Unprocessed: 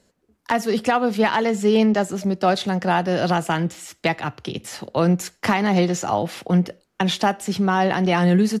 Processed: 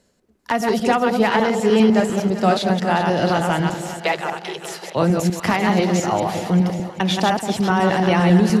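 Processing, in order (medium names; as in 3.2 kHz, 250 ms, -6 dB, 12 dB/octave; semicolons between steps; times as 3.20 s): chunks repeated in reverse 100 ms, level -3.5 dB; 3.74–4.95 s: steep high-pass 340 Hz 96 dB/octave; on a send: echo whose repeats swap between lows and highs 196 ms, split 900 Hz, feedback 71%, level -9 dB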